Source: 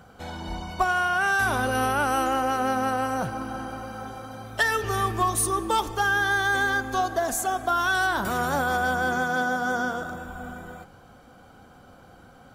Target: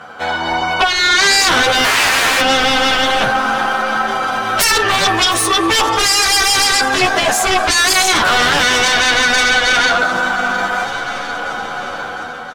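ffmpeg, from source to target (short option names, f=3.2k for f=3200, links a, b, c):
-filter_complex "[0:a]dynaudnorm=f=390:g=5:m=10.5dB,asettb=1/sr,asplit=3[a][b][c];[a]atrim=end=1.844[d];[b]atrim=start=1.84:end=2.41,asetpts=PTS-STARTPTS,afade=t=in:d=0.004:c=qsin,afade=t=out:st=0.566:d=0.004:c=qsin,aeval=exprs='(mod(5.01*val(0)+1,2)-1)/5.01':c=same[e];[c]atrim=start=2.406[f];[d][e]acrossfade=d=0.004:c1=hsin:c2=qsin[g];[g][f]acrossfade=d=0.004:c1=qsin:c2=hsin,bandpass=f=1.6k:t=q:w=0.71:csg=0,aeval=exprs='0.631*sin(PI/2*6.31*val(0)/0.631)':c=same,aecho=1:1:707|1414|2121|2828:0.126|0.0667|0.0354|0.0187,alimiter=level_in=9dB:limit=-1dB:release=50:level=0:latency=1,asplit=2[h][i];[i]adelay=10.4,afreqshift=0.25[j];[h][j]amix=inputs=2:normalize=1,volume=-4.5dB"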